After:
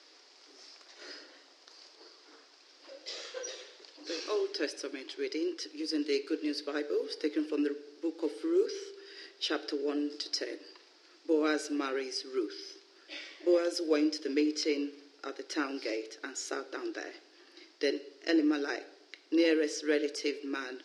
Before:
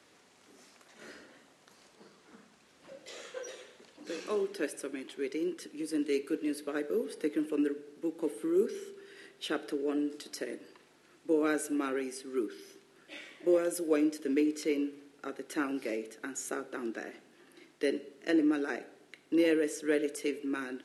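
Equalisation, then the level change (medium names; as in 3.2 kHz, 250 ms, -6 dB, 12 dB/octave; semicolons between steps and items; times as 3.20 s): brick-wall FIR high-pass 270 Hz; resonant low-pass 5 kHz, resonance Q 5.4; 0.0 dB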